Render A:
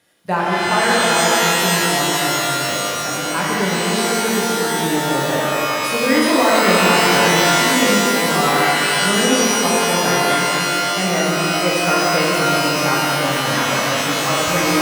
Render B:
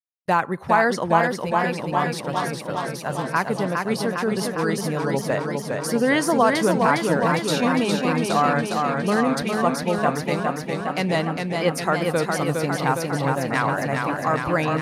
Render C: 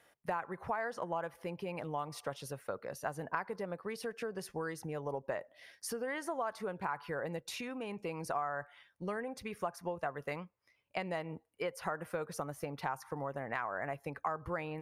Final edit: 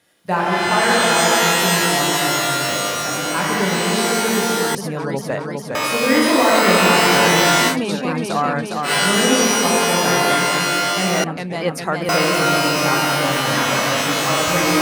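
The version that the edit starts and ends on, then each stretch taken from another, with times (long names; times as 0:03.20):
A
0:04.75–0:05.75: punch in from B
0:07.72–0:08.87: punch in from B, crossfade 0.10 s
0:11.24–0:12.09: punch in from B
not used: C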